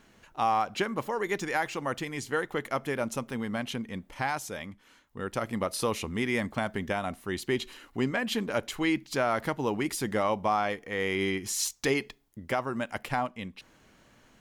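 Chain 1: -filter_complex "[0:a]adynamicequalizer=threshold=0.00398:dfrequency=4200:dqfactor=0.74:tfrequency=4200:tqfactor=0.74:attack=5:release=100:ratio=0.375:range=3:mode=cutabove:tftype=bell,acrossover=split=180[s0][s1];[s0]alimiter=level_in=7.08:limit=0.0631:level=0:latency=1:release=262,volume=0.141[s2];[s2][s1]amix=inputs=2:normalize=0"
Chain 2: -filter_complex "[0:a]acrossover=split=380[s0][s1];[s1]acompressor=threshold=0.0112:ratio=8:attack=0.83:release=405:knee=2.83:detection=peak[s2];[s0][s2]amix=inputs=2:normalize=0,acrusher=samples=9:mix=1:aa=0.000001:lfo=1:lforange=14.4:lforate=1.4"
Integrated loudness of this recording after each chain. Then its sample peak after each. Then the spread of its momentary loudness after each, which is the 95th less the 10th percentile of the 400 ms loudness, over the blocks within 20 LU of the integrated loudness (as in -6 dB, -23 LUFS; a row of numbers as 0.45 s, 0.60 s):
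-31.5 LUFS, -37.0 LUFS; -14.0 dBFS, -19.5 dBFS; 9 LU, 9 LU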